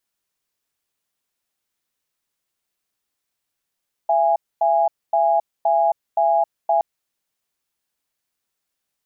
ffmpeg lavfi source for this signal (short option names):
-f lavfi -i "aevalsrc='0.141*(sin(2*PI*672*t)+sin(2*PI*824*t))*clip(min(mod(t,0.52),0.27-mod(t,0.52))/0.005,0,1)':d=2.72:s=44100"